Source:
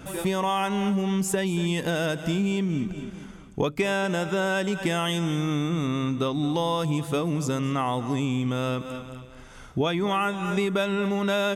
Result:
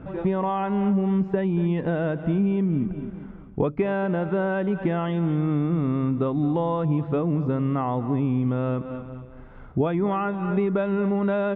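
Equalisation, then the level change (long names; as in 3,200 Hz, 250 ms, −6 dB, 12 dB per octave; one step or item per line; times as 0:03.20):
high-frequency loss of the air 290 metres
head-to-tape spacing loss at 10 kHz 28 dB
high-shelf EQ 3,300 Hz −10.5 dB
+4.0 dB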